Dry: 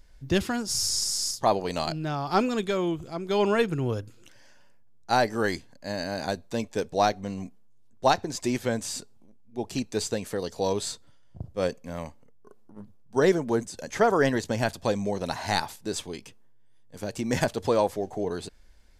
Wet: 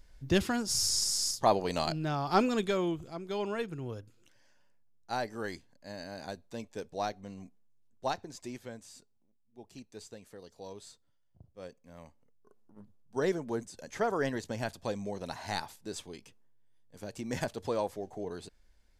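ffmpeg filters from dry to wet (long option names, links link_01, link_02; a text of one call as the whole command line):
ffmpeg -i in.wav -af "volume=7.5dB,afade=type=out:start_time=2.65:duration=0.79:silence=0.354813,afade=type=out:start_time=8.06:duration=0.79:silence=0.421697,afade=type=in:start_time=11.76:duration=1.04:silence=0.316228" out.wav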